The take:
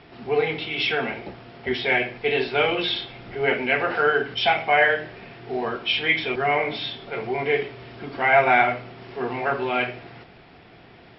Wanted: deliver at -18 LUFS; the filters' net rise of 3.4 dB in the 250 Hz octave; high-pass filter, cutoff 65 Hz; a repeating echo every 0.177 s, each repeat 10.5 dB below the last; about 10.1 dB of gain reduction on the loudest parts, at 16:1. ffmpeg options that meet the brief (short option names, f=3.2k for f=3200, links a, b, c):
-af "highpass=65,equalizer=f=250:t=o:g=4.5,acompressor=threshold=-22dB:ratio=16,aecho=1:1:177|354|531:0.299|0.0896|0.0269,volume=9.5dB"